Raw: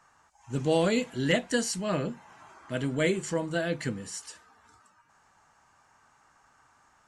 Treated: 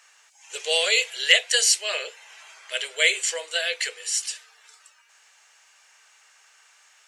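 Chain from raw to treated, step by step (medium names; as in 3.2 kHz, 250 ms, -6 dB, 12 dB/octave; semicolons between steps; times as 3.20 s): Chebyshev high-pass 430 Hz, order 6; resonant high shelf 1.7 kHz +14 dB, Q 1.5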